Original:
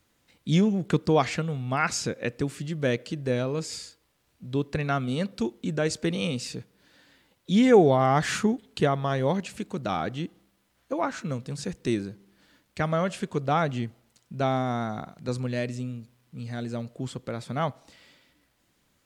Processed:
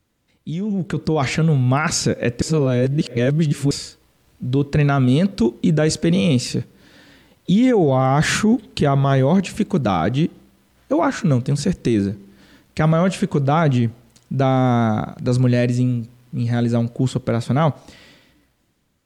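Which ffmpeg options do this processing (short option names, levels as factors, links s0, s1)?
-filter_complex "[0:a]asplit=3[s0][s1][s2];[s0]atrim=end=2.422[s3];[s1]atrim=start=2.418:end=3.712,asetpts=PTS-STARTPTS,areverse[s4];[s2]atrim=start=3.708[s5];[s3][s4]acrossfade=d=0.004:c1=hsin:c2=hsin[s6];[s6][s5]acrossfade=d=0.004:c1=hsin:c2=hsin,lowshelf=f=440:g=7,alimiter=limit=0.126:level=0:latency=1:release=12,dynaudnorm=f=150:g=13:m=4.47,volume=0.668"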